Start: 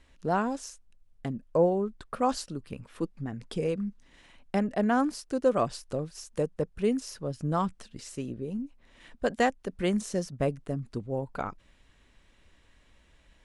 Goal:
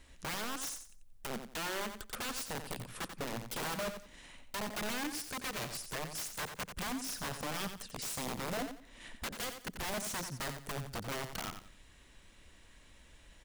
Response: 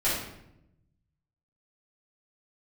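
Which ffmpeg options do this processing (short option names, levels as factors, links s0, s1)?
-af "highshelf=f=6800:g=11.5,acompressor=threshold=0.02:ratio=6,aeval=exprs='(mod(50.1*val(0)+1,2)-1)/50.1':c=same,aecho=1:1:89|178|267:0.376|0.094|0.0235,volume=1.12"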